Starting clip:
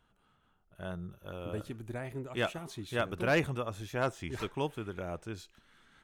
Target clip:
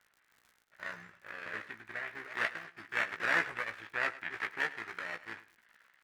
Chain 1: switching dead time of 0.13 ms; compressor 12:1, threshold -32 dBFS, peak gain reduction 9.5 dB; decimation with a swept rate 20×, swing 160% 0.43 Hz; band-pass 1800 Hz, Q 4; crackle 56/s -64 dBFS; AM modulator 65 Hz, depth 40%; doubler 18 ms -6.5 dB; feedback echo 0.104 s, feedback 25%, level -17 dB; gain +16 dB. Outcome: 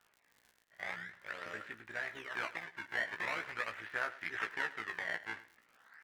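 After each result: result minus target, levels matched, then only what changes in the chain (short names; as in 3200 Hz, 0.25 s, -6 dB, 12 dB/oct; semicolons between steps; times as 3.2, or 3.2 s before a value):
compressor: peak gain reduction +9.5 dB; decimation with a swept rate: distortion +8 dB; switching dead time: distortion -7 dB
remove: compressor 12:1, threshold -32 dBFS, peak gain reduction 9.5 dB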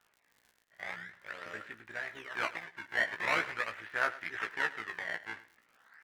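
decimation with a swept rate: distortion +10 dB; switching dead time: distortion -7 dB
change: decimation with a swept rate 5×, swing 160% 0.43 Hz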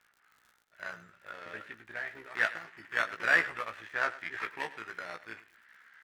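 switching dead time: distortion -7 dB
change: switching dead time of 0.39 ms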